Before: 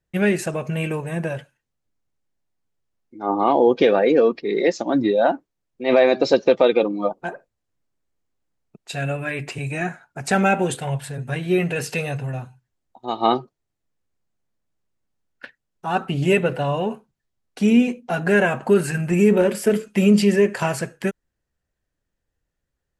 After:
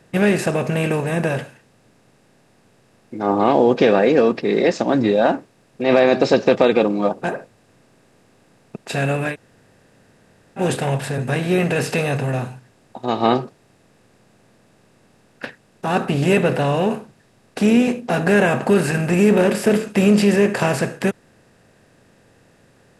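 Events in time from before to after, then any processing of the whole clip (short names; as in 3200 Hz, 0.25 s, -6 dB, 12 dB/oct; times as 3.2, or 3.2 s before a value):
9.31–10.61 room tone, crossfade 0.10 s
whole clip: per-bin compression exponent 0.6; bell 100 Hz +8 dB 0.79 oct; gain -2 dB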